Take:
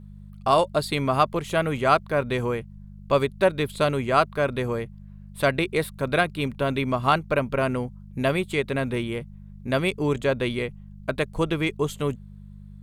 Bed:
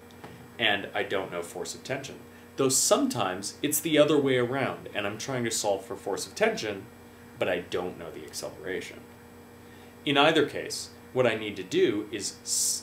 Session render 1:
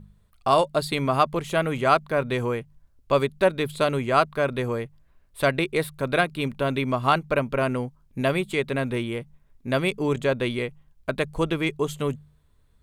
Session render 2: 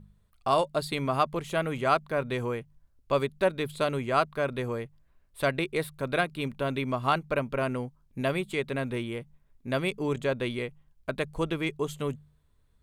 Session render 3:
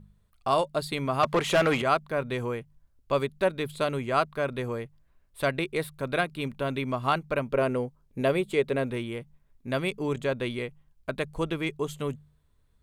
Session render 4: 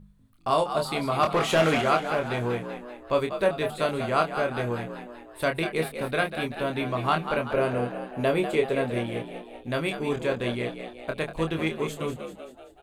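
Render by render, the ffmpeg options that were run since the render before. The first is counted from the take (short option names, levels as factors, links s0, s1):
-af "bandreject=f=50:t=h:w=4,bandreject=f=100:t=h:w=4,bandreject=f=150:t=h:w=4,bandreject=f=200:t=h:w=4"
-af "volume=0.562"
-filter_complex "[0:a]asettb=1/sr,asplit=3[s0][s1][s2];[s0]atrim=end=1.234[s3];[s1]atrim=start=1.23:end=1.82,asetpts=PTS-STARTPTS,afade=t=in:d=0.004:c=qsin,afade=t=out:st=0.586:d=0.004:c=qsin,asplit=2[s4][s5];[s5]highpass=f=720:p=1,volume=14.1,asoftclip=type=tanh:threshold=0.224[s6];[s4][s6]amix=inputs=2:normalize=0,lowpass=f=3600:p=1,volume=0.501[s7];[s2]atrim=start=1.816[s8];[s3][s7]acrossfade=d=0.004:c1=hsin:c2=qsin[s9];[s9][s8]acrossfade=d=0.004:c1=qsin:c2=hsin,asettb=1/sr,asplit=3[s10][s11][s12];[s10]atrim=end=7.524[s13];[s11]atrim=start=7.52:end=8.9,asetpts=PTS-STARTPTS,afade=t=in:d=0.004:c=qsin,afade=t=out:st=1.376:d=0.004:c=qsin,equalizer=f=460:w=1.5:g=7.5[s14];[s12]atrim=start=8.896[s15];[s13][s14]acrossfade=d=0.004:c1=hsin:c2=qsin[s16];[s16][s15]acrossfade=d=0.004:c1=qsin:c2=hsin"
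-filter_complex "[0:a]asplit=2[s0][s1];[s1]adelay=25,volume=0.562[s2];[s0][s2]amix=inputs=2:normalize=0,asplit=7[s3][s4][s5][s6][s7][s8][s9];[s4]adelay=192,afreqshift=63,volume=0.355[s10];[s5]adelay=384,afreqshift=126,volume=0.191[s11];[s6]adelay=576,afreqshift=189,volume=0.104[s12];[s7]adelay=768,afreqshift=252,volume=0.0556[s13];[s8]adelay=960,afreqshift=315,volume=0.0302[s14];[s9]adelay=1152,afreqshift=378,volume=0.0162[s15];[s3][s10][s11][s12][s13][s14][s15]amix=inputs=7:normalize=0"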